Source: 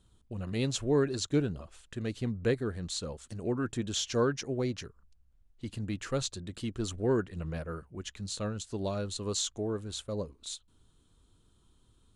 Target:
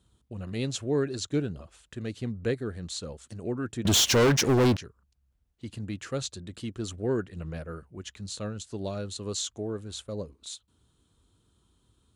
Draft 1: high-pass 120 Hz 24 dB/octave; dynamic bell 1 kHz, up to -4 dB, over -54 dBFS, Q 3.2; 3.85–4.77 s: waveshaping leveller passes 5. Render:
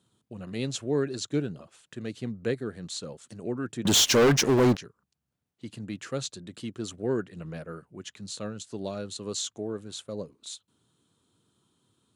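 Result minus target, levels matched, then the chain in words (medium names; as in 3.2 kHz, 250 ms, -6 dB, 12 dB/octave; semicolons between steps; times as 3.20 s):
125 Hz band -3.5 dB
high-pass 45 Hz 24 dB/octave; dynamic bell 1 kHz, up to -4 dB, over -54 dBFS, Q 3.2; 3.85–4.77 s: waveshaping leveller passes 5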